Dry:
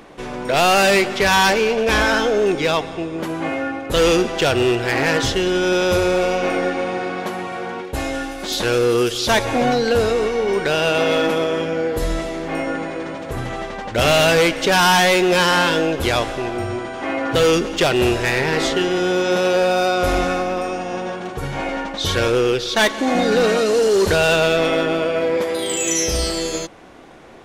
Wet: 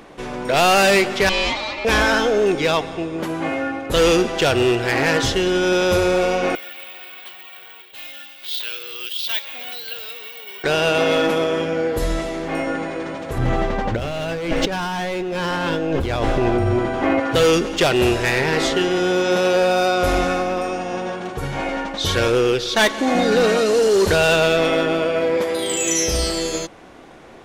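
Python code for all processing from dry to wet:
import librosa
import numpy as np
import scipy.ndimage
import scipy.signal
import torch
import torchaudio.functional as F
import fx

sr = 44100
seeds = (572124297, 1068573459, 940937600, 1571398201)

y = fx.chain(x, sr, fx.lower_of_two(delay_ms=3.4),
    fx.bandpass_edges(low_hz=500.0, high_hz=3400.0),
    fx.ring_mod(carrier_hz=1500.0), at=(1.29, 1.85))
y = fx.chain(y, sr, fx.bandpass_q(hz=3200.0, q=2.8),
    fx.resample_bad(factor=2, down='filtered', up='zero_stuff'), at=(6.55, 10.64))
y = fx.chain(y, sr, fx.median_filter(points=3),
    fx.tilt_eq(slope=-2.0),
    fx.over_compress(threshold_db=-21.0, ratio=-1.0), at=(13.38, 17.2))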